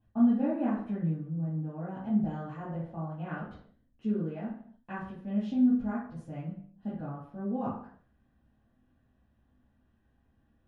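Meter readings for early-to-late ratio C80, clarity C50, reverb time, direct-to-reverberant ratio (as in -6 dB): 7.5 dB, 2.5 dB, 0.55 s, -8.0 dB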